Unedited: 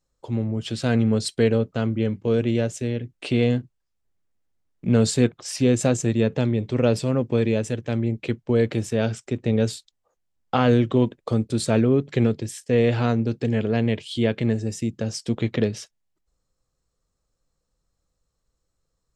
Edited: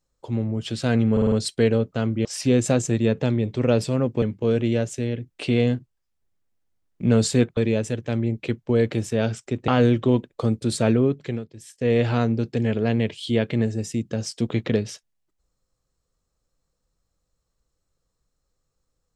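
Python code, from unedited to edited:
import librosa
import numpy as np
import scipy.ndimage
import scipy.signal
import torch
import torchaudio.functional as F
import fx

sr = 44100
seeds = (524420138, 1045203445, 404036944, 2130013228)

y = fx.edit(x, sr, fx.stutter(start_s=1.12, slice_s=0.05, count=5),
    fx.move(start_s=5.4, length_s=1.97, to_s=2.05),
    fx.cut(start_s=9.48, length_s=1.08),
    fx.fade_down_up(start_s=11.88, length_s=0.99, db=-20.0, fade_s=0.49), tone=tone)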